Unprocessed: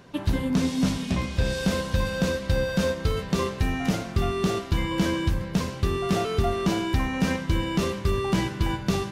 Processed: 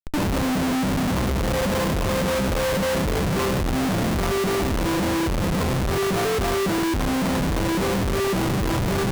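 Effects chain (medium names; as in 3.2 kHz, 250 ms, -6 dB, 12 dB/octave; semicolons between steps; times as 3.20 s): brick-wall FIR low-pass 1.3 kHz; transient shaper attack +7 dB, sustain -1 dB; Schmitt trigger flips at -39 dBFS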